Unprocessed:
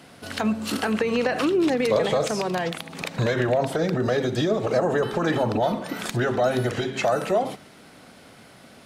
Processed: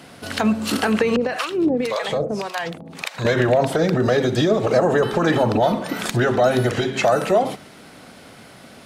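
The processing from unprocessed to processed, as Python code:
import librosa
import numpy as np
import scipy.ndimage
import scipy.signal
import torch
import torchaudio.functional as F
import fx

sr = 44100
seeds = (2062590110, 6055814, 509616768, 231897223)

y = fx.harmonic_tremolo(x, sr, hz=1.8, depth_pct=100, crossover_hz=670.0, at=(1.16, 3.25))
y = y * 10.0 ** (5.0 / 20.0)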